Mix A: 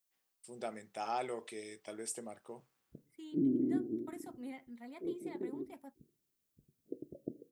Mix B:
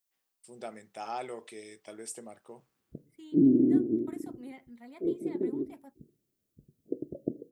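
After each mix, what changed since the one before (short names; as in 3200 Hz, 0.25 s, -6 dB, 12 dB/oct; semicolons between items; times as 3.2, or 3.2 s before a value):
background +9.5 dB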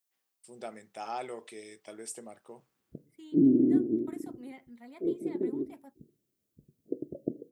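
master: add low shelf 61 Hz -8 dB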